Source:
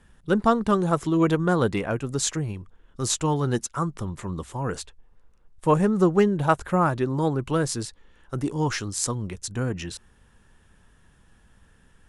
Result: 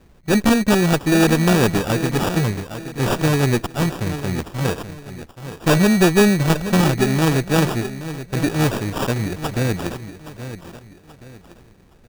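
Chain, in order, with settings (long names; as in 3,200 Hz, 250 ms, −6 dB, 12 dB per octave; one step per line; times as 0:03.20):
lower of the sound and its delayed copy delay 0.5 ms
repeating echo 825 ms, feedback 34%, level −12 dB
in parallel at −0.5 dB: brickwall limiter −16 dBFS, peak gain reduction 9.5 dB
0:07.84–0:08.50: on the sum: high-frequency loss of the air 350 metres
decimation without filtering 21×
low-shelf EQ 89 Hz −5.5 dB
level +2.5 dB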